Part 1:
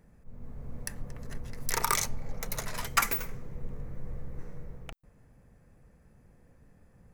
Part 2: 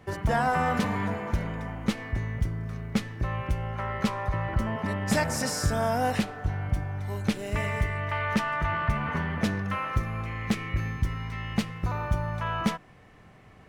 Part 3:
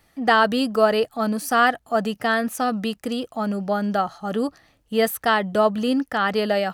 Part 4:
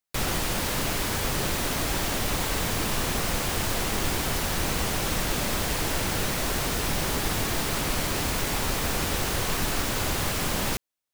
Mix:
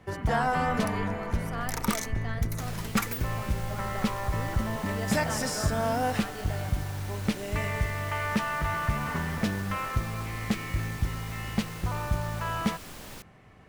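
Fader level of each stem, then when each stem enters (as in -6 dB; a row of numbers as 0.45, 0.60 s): -5.0, -1.5, -19.5, -16.5 dB; 0.00, 0.00, 0.00, 2.45 s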